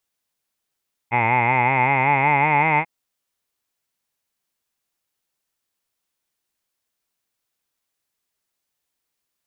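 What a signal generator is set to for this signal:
vowel from formants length 1.74 s, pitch 115 Hz, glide +5.5 semitones, F1 870 Hz, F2 2,100 Hz, F3 2,500 Hz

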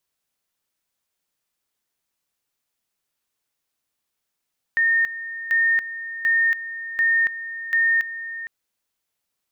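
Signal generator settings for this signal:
tone at two levels in turn 1,830 Hz −15.5 dBFS, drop 13.5 dB, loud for 0.28 s, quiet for 0.46 s, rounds 5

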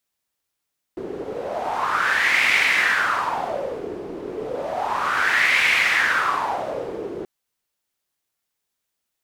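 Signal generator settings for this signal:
wind from filtered noise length 6.28 s, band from 370 Hz, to 2,200 Hz, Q 5.1, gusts 2, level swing 13 dB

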